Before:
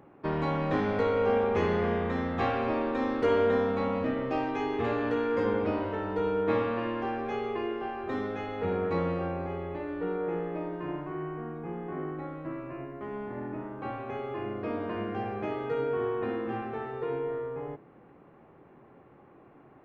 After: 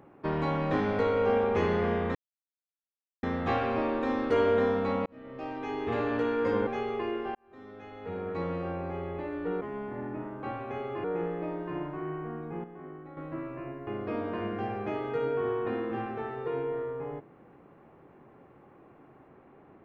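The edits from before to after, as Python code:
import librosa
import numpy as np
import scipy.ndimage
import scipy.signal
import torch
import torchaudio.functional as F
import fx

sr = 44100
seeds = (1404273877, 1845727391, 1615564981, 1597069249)

y = fx.edit(x, sr, fx.insert_silence(at_s=2.15, length_s=1.08),
    fx.fade_in_span(start_s=3.98, length_s=0.99),
    fx.cut(start_s=5.59, length_s=1.64),
    fx.fade_in_span(start_s=7.91, length_s=1.75),
    fx.clip_gain(start_s=11.77, length_s=0.53, db=-9.0),
    fx.move(start_s=13.0, length_s=1.43, to_s=10.17), tone=tone)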